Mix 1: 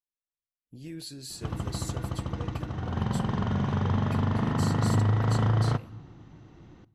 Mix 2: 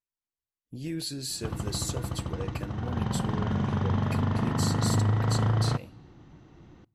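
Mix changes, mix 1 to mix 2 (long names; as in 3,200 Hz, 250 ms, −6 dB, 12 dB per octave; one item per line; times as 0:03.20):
speech +6.5 dB
background: send −8.5 dB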